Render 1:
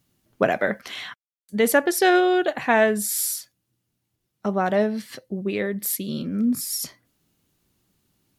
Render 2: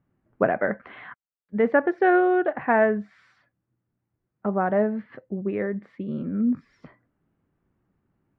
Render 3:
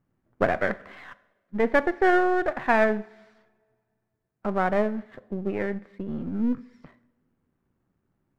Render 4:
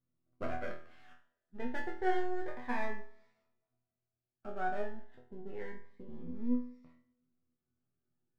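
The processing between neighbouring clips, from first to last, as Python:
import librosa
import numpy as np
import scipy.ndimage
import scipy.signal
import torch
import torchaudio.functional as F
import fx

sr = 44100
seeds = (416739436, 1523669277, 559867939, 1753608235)

y1 = scipy.signal.sosfilt(scipy.signal.butter(4, 1800.0, 'lowpass', fs=sr, output='sos'), x)
y1 = y1 * 10.0 ** (-1.0 / 20.0)
y2 = np.where(y1 < 0.0, 10.0 ** (-7.0 / 20.0) * y1, y1)
y2 = fx.rev_double_slope(y2, sr, seeds[0], early_s=0.78, late_s=2.2, knee_db=-18, drr_db=16.0)
y2 = fx.dynamic_eq(y2, sr, hz=1800.0, q=0.71, threshold_db=-38.0, ratio=4.0, max_db=3)
y3 = np.where(y2 < 0.0, 10.0 ** (-3.0 / 20.0) * y2, y2)
y3 = fx.resonator_bank(y3, sr, root=40, chord='fifth', decay_s=0.42)
y3 = fx.notch_cascade(y3, sr, direction='rising', hz=0.29)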